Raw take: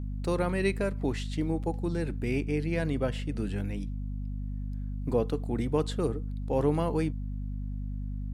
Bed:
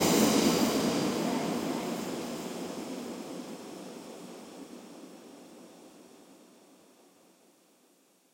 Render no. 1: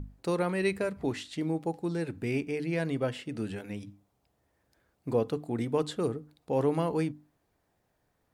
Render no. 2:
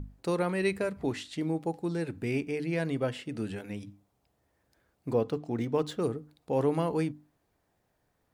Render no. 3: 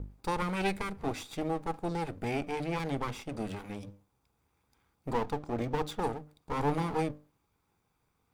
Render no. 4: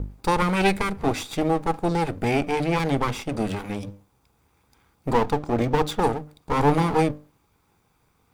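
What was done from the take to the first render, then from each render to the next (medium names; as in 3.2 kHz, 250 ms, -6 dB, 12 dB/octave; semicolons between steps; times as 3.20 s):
hum notches 50/100/150/200/250/300 Hz
5.13–6.02 s: decimation joined by straight lines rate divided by 3×
comb filter that takes the minimum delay 0.83 ms; small resonant body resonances 470/820 Hz, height 6 dB
trim +10.5 dB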